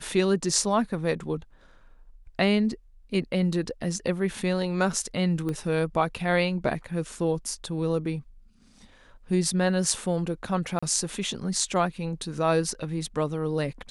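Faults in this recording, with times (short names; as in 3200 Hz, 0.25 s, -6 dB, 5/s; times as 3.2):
5.49 pop -20 dBFS
10.79–10.82 gap 35 ms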